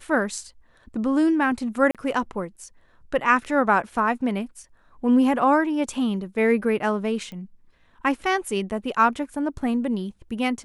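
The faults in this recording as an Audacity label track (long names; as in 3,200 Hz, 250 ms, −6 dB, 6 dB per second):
1.910000	1.950000	drop-out 37 ms
7.320000	7.320000	click −26 dBFS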